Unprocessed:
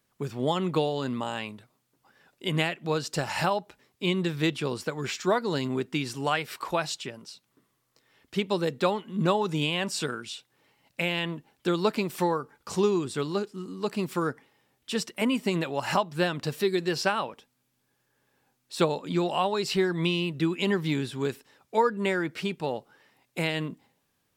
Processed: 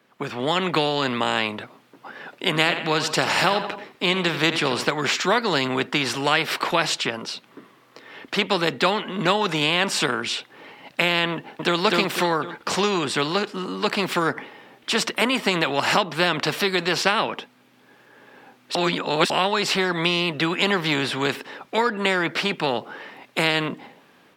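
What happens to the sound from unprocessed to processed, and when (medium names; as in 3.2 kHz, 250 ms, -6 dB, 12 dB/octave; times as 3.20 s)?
2.53–4.91 s: feedback delay 85 ms, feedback 37%, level -16.5 dB
11.34–11.79 s: echo throw 250 ms, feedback 25%, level -1.5 dB
18.75–19.30 s: reverse
whole clip: three-band isolator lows -24 dB, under 170 Hz, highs -17 dB, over 3.7 kHz; level rider gain up to 8 dB; spectrum-flattening compressor 2:1; trim +1.5 dB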